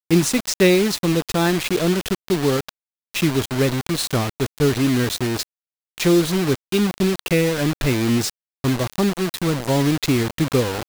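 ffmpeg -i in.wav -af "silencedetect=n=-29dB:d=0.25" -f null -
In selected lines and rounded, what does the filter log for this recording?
silence_start: 2.69
silence_end: 3.14 | silence_duration: 0.45
silence_start: 5.43
silence_end: 5.98 | silence_duration: 0.55
silence_start: 8.30
silence_end: 8.64 | silence_duration: 0.34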